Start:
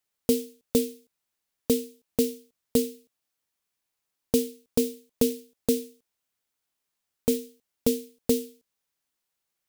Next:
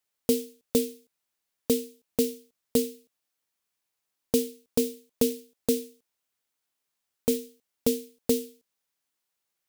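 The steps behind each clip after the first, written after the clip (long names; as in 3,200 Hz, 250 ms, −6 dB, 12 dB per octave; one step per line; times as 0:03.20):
low-shelf EQ 170 Hz −5 dB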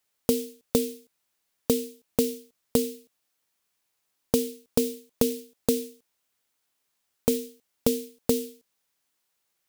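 downward compressor, threshold −24 dBFS, peak gain reduction 6.5 dB
level +5.5 dB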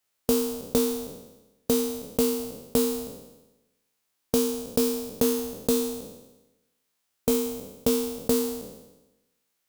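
peak hold with a decay on every bin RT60 1.02 s
level −2.5 dB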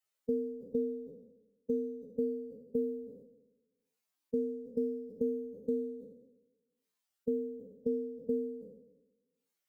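expanding power law on the bin magnitudes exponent 2.4
level −9 dB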